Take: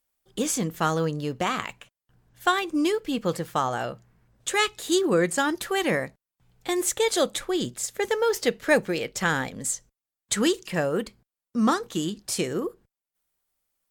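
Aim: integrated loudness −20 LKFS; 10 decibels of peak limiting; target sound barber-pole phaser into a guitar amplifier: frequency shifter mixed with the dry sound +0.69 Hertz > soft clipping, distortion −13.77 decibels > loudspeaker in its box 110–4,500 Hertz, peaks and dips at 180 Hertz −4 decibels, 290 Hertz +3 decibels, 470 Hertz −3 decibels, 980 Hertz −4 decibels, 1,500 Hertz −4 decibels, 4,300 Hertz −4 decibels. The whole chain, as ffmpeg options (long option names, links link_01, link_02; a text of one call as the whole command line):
ffmpeg -i in.wav -filter_complex "[0:a]alimiter=limit=-17.5dB:level=0:latency=1,asplit=2[link_01][link_02];[link_02]afreqshift=0.69[link_03];[link_01][link_03]amix=inputs=2:normalize=1,asoftclip=threshold=-26dB,highpass=110,equalizer=frequency=180:width_type=q:width=4:gain=-4,equalizer=frequency=290:width_type=q:width=4:gain=3,equalizer=frequency=470:width_type=q:width=4:gain=-3,equalizer=frequency=980:width_type=q:width=4:gain=-4,equalizer=frequency=1500:width_type=q:width=4:gain=-4,equalizer=frequency=4300:width_type=q:width=4:gain=-4,lowpass=frequency=4500:width=0.5412,lowpass=frequency=4500:width=1.3066,volume=16dB" out.wav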